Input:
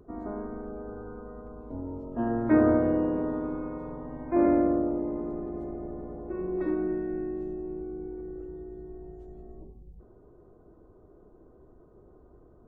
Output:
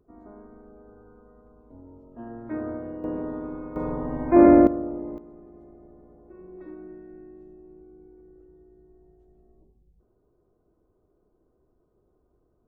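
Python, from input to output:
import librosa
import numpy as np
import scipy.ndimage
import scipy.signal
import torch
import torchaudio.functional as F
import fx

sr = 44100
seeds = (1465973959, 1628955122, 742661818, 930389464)

y = fx.gain(x, sr, db=fx.steps((0.0, -11.0), (3.04, -2.0), (3.76, 9.0), (4.67, -3.0), (5.18, -13.0)))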